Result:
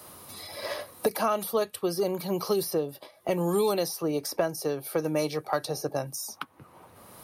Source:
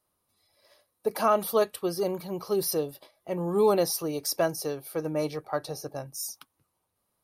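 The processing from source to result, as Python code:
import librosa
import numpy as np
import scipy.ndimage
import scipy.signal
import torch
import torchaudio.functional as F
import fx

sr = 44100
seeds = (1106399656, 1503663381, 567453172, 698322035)

y = scipy.signal.sosfilt(scipy.signal.butter(2, 77.0, 'highpass', fs=sr, output='sos'), x)
y = fx.band_squash(y, sr, depth_pct=100)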